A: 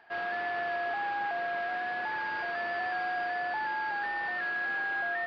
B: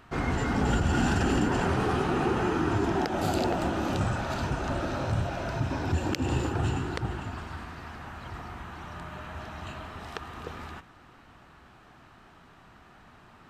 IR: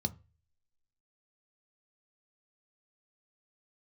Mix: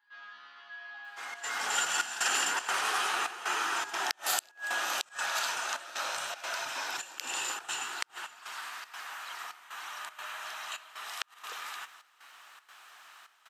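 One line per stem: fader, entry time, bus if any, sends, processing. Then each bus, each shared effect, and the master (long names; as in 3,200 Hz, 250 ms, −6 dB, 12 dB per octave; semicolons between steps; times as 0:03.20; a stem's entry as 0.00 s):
+1.5 dB, 0.00 s, send −4.5 dB, echo send −12 dB, Bessel high-pass filter 390 Hz, order 4; resonators tuned to a chord C#3 fifth, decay 0.39 s
−9.5 dB, 1.05 s, send −21 dB, no echo send, high-pass filter 790 Hz 12 dB per octave; automatic gain control gain up to 11 dB; gate pattern "xxx.xxxxxx..x" 156 BPM −12 dB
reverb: on, RT60 0.30 s, pre-delay 3 ms
echo: single-tap delay 651 ms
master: spectral tilt +4 dB per octave; gate with flip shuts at −14 dBFS, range −30 dB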